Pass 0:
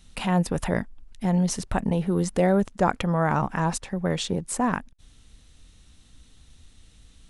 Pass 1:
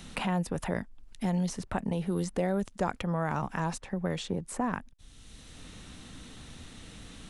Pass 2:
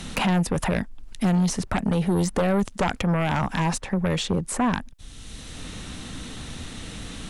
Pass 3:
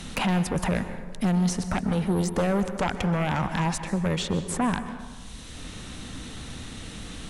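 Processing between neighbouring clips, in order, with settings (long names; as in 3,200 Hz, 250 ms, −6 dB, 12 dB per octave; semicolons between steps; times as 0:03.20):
multiband upward and downward compressor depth 70%; level −7 dB
sine wavefolder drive 10 dB, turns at −13.5 dBFS; level −3 dB
dense smooth reverb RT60 1.4 s, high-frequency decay 0.5×, pre-delay 115 ms, DRR 9.5 dB; level −2.5 dB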